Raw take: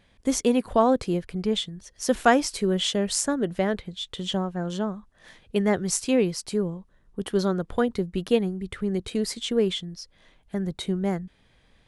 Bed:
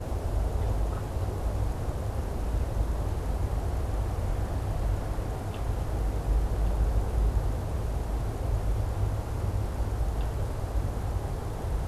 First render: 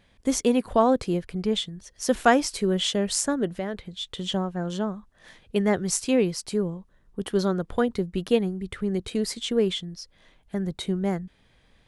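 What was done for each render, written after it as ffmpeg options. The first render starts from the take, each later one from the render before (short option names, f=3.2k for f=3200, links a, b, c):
-filter_complex "[0:a]asettb=1/sr,asplit=3[a][b][c];[a]atrim=end=3.484[d];[b]atrim=start=3.48:end=3.99,asetpts=PTS-STARTPTS,afade=t=in:d=0.004:c=qsin,afade=t=out:st=0.506:d=0.004:c=qsin,acompressor=threshold=-36dB:ratio=1.5:attack=3.2:release=140:knee=1:detection=peak[e];[c]atrim=start=3.986[f];[d][e]acrossfade=d=0.004:c1=hsin:c2=qsin[g];[g][f]acrossfade=d=0.004:c1=qsin:c2=hsin"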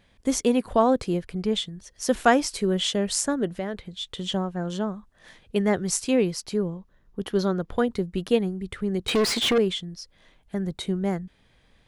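-filter_complex "[0:a]asettb=1/sr,asplit=3[a][b][c];[a]atrim=end=6.404[d];[b]atrim=start=6.4:end=7.79,asetpts=PTS-STARTPTS,afade=t=in:d=0.004:c=qsin,afade=t=out:st=1.386:d=0.004:c=qsin,equalizer=f=8.7k:w=3.5:g=-11.5[e];[c]atrim=start=7.786[f];[d][e]acrossfade=d=0.004:c1=hsin:c2=qsin[g];[g][f]acrossfade=d=0.004:c1=qsin:c2=hsin,asettb=1/sr,asplit=3[h][i][j];[h]atrim=end=9.084[k];[i]atrim=start=9.08:end=9.58,asetpts=PTS-STARTPTS,afade=t=in:d=0.004:c=qsin,afade=t=out:st=0.496:d=0.004:c=qsin,asplit=2[l][m];[m]highpass=f=720:p=1,volume=29dB,asoftclip=type=tanh:threshold=-13.5dB[n];[l][n]amix=inputs=2:normalize=0,lowpass=f=3.2k:p=1,volume=-6dB[o];[j]atrim=start=9.576[p];[k][o]acrossfade=d=0.004:c1=hsin:c2=qsin[q];[q][p]acrossfade=d=0.004:c1=qsin:c2=hsin"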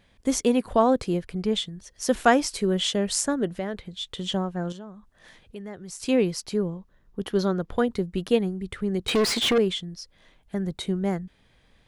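-filter_complex "[0:a]asettb=1/sr,asplit=3[a][b][c];[a]atrim=end=4.724[d];[b]atrim=start=4.72:end=6,asetpts=PTS-STARTPTS,afade=t=in:d=0.004:c=qsin,afade=t=out:st=1.276:d=0.004:c=qsin,acompressor=threshold=-47dB:ratio=2:attack=3.2:release=140:knee=1:detection=peak[e];[c]atrim=start=5.996[f];[d][e]acrossfade=d=0.004:c1=hsin:c2=qsin[g];[g][f]acrossfade=d=0.004:c1=qsin:c2=hsin"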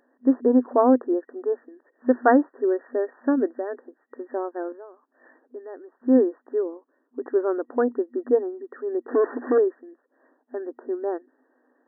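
-af "aemphasis=mode=reproduction:type=riaa,afftfilt=real='re*between(b*sr/4096,240,1900)':imag='im*between(b*sr/4096,240,1900)':win_size=4096:overlap=0.75"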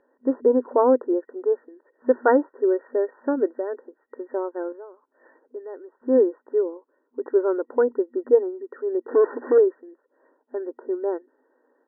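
-af "lowpass=1.7k,aecho=1:1:2.1:0.51"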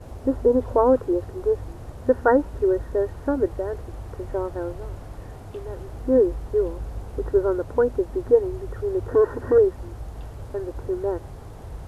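-filter_complex "[1:a]volume=-6.5dB[a];[0:a][a]amix=inputs=2:normalize=0"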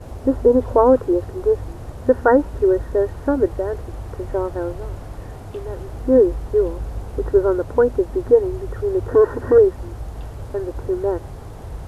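-af "volume=4.5dB,alimiter=limit=-3dB:level=0:latency=1"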